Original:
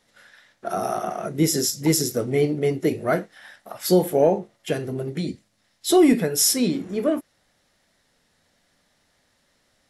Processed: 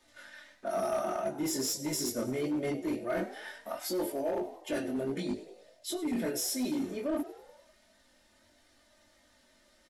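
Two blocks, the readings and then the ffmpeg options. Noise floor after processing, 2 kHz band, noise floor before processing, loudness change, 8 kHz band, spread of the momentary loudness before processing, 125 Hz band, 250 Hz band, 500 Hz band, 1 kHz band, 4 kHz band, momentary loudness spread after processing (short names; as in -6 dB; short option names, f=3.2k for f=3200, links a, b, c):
-66 dBFS, -9.0 dB, -67 dBFS, -12.0 dB, -11.5 dB, 13 LU, -17.0 dB, -11.0 dB, -11.5 dB, -10.0 dB, -11.0 dB, 11 LU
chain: -filter_complex "[0:a]aecho=1:1:3.3:0.65,acrossover=split=140[a][b];[b]alimiter=limit=-13dB:level=0:latency=1:release=32[c];[a][c]amix=inputs=2:normalize=0,flanger=delay=19.5:depth=3.8:speed=1.5,areverse,acompressor=threshold=-31dB:ratio=10,areverse,asplit=6[d][e][f][g][h][i];[e]adelay=99,afreqshift=67,volume=-16dB[j];[f]adelay=198,afreqshift=134,volume=-21dB[k];[g]adelay=297,afreqshift=201,volume=-26.1dB[l];[h]adelay=396,afreqshift=268,volume=-31.1dB[m];[i]adelay=495,afreqshift=335,volume=-36.1dB[n];[d][j][k][l][m][n]amix=inputs=6:normalize=0,flanger=delay=2.4:depth=5.8:regen=-48:speed=0.23:shape=triangular,acontrast=87,asoftclip=type=hard:threshold=-26dB,equalizer=f=630:w=7.5:g=3.5,volume=-1.5dB"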